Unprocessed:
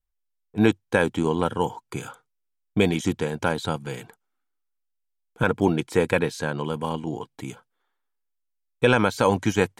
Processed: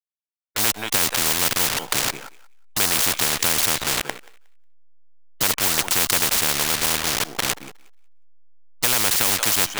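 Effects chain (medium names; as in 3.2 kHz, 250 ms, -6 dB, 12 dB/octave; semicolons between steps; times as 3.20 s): send-on-delta sampling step -32 dBFS; thinning echo 181 ms, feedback 16%, high-pass 750 Hz, level -21.5 dB; spectrum-flattening compressor 10:1; trim +4.5 dB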